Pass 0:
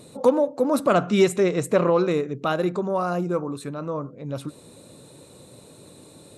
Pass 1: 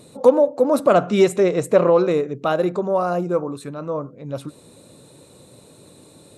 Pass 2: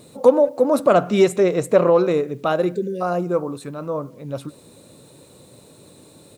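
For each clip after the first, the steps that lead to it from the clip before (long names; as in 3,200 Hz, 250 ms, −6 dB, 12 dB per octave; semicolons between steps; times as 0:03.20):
dynamic equaliser 580 Hz, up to +6 dB, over −33 dBFS, Q 1.1
time-frequency box erased 0:02.67–0:03.01, 550–1,500 Hz; far-end echo of a speakerphone 190 ms, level −29 dB; bit reduction 10 bits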